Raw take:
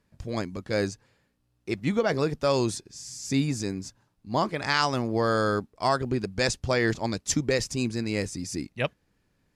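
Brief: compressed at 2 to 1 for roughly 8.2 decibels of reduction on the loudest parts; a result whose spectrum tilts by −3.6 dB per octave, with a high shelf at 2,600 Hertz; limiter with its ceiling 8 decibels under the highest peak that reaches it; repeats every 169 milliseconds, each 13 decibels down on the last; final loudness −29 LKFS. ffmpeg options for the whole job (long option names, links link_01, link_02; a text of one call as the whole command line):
ffmpeg -i in.wav -af "highshelf=frequency=2600:gain=8,acompressor=threshold=-30dB:ratio=2,alimiter=limit=-19.5dB:level=0:latency=1,aecho=1:1:169|338|507:0.224|0.0493|0.0108,volume=3dB" out.wav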